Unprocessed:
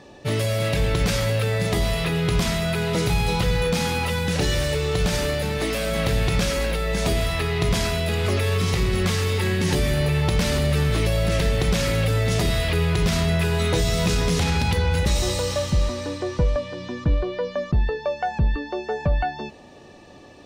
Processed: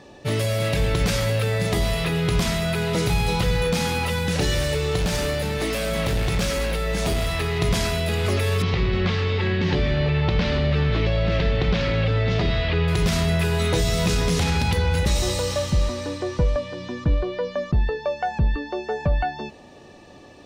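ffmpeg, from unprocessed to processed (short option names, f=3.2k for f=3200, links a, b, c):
-filter_complex "[0:a]asettb=1/sr,asplit=3[a][b][c];[a]atrim=end=4.974[d];[b]atrim=start=4.97:end=7.59,asetpts=PTS-STARTPTS,afade=t=in:d=0.004:c=qsin,afade=t=out:st=2.616:d=0.004:c=qsin,asoftclip=type=hard:threshold=-18.5dB[e];[c]atrim=start=7.586[f];[d][e]acrossfade=d=0.004:c1=hsin:c2=qsin[g];[g][f]acrossfade=d=0.004:c1=qsin:c2=hsin,asettb=1/sr,asplit=3[h][i][j];[h]atrim=end=8.624[k];[i]atrim=start=8.62:end=12.88,asetpts=PTS-STARTPTS,afade=t=in:d=0.004:c=qsin,afade=t=out:st=4.256:d=0.004:c=qsin,lowpass=f=4.2k:w=0.5412,lowpass=f=4.2k:w=1.3066[l];[j]atrim=start=12.876[m];[k][l]acrossfade=d=0.004:c1=hsin:c2=qsin[n];[n][m]acrossfade=d=0.004:c1=qsin:c2=hsin"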